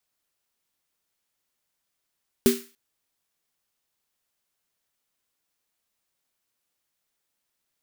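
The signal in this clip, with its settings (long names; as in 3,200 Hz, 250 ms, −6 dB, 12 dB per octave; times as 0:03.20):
synth snare length 0.29 s, tones 240 Hz, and 390 Hz, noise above 1,300 Hz, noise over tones −9 dB, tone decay 0.27 s, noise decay 0.39 s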